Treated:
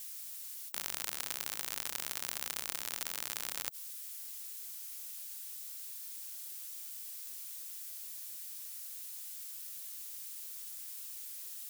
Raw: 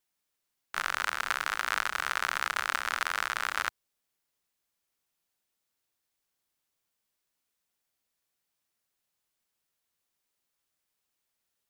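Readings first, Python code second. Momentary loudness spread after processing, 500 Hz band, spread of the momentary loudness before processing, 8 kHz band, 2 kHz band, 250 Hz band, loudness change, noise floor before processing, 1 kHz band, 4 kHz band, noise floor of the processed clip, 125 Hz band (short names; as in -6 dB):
6 LU, -7.5 dB, 3 LU, +4.5 dB, -16.0 dB, -3.0 dB, -9.0 dB, -83 dBFS, -17.5 dB, -4.5 dB, -46 dBFS, n/a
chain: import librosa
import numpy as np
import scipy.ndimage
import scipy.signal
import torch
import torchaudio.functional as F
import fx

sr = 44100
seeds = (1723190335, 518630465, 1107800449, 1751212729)

y = np.diff(x, prepend=0.0)
y = fx.spectral_comp(y, sr, ratio=10.0)
y = y * librosa.db_to_amplitude(3.5)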